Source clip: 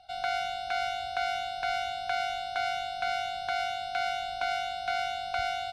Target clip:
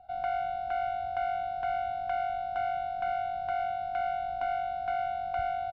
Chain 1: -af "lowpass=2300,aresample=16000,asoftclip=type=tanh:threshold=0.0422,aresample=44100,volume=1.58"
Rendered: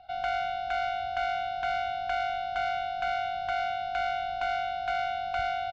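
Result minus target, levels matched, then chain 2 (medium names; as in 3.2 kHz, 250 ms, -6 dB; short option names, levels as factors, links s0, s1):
2 kHz band +5.5 dB
-af "lowpass=960,aresample=16000,asoftclip=type=tanh:threshold=0.0422,aresample=44100,volume=1.58"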